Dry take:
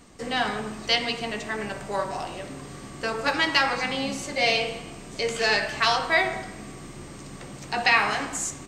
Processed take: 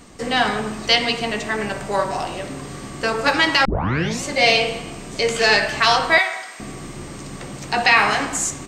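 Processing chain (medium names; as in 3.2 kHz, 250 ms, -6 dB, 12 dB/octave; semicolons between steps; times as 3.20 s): 3.65 s: tape start 0.58 s; 6.18–6.60 s: high-pass 970 Hz 12 dB/octave; loudness maximiser +8 dB; trim -1 dB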